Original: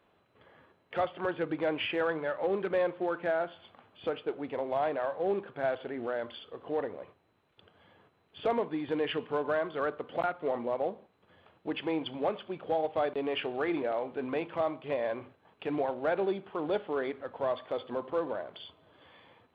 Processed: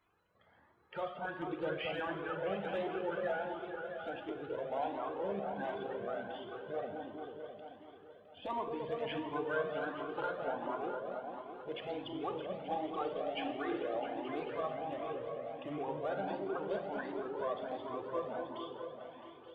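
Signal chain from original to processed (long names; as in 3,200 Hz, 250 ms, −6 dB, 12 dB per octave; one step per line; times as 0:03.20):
spectral magnitudes quantised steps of 30 dB
0:14.70–0:15.94: Butterworth band-reject 4,200 Hz, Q 3.3
echo whose low-pass opens from repeat to repeat 220 ms, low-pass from 750 Hz, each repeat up 1 octave, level −3 dB
four-comb reverb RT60 0.97 s, combs from 32 ms, DRR 6.5 dB
flanger whose copies keep moving one way rising 1.4 Hz
level −3.5 dB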